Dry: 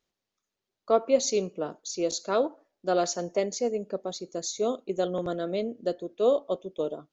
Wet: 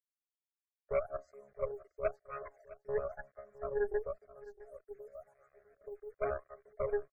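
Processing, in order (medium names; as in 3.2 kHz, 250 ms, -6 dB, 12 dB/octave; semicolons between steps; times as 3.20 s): vocoder on a held chord bare fifth, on C#3; peaking EQ 1 kHz -5 dB 0.4 oct; transient shaper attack +1 dB, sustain +6 dB; 4.51–6.18 s: compression 6:1, threshold -43 dBFS, peak gain reduction 20.5 dB; wah-wah 0.96 Hz 390–1200 Hz, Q 18; Chebyshev shaper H 4 -11 dB, 8 -43 dB, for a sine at -31 dBFS; word length cut 12-bit, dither none; static phaser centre 900 Hz, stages 6; loudest bins only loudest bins 64; delay 660 ms -18 dB; trim +8 dB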